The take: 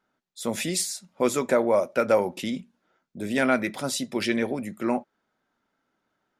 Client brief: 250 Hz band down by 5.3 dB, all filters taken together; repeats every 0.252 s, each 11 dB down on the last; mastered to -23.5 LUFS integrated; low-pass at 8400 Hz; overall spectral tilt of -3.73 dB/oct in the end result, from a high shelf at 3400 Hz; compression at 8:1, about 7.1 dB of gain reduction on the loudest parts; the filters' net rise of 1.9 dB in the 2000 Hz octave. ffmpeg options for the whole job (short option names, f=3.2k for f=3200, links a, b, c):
-af "lowpass=8.4k,equalizer=f=250:t=o:g=-6.5,equalizer=f=2k:t=o:g=4.5,highshelf=f=3.4k:g=-6.5,acompressor=threshold=-24dB:ratio=8,aecho=1:1:252|504|756:0.282|0.0789|0.0221,volume=8dB"